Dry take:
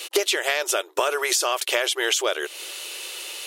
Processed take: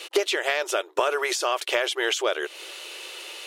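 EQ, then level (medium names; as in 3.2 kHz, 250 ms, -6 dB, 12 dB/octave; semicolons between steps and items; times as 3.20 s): low-pass 3 kHz 6 dB/octave; 0.0 dB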